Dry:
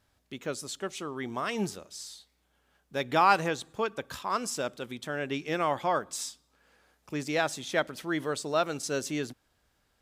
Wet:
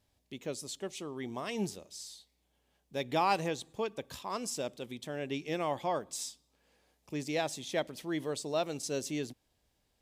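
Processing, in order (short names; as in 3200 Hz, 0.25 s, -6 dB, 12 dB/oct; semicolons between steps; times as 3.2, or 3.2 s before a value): bell 1400 Hz -11.5 dB 0.68 oct; gain -3 dB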